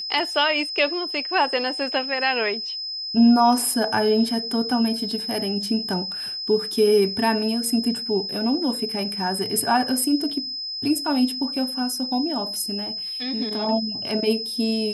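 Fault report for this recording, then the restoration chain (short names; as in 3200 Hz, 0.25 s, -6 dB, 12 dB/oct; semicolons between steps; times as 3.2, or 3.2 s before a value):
tone 5100 Hz -28 dBFS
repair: notch 5100 Hz, Q 30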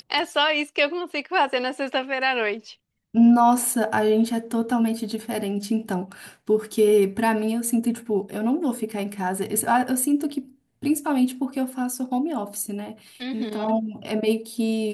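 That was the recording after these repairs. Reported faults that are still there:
none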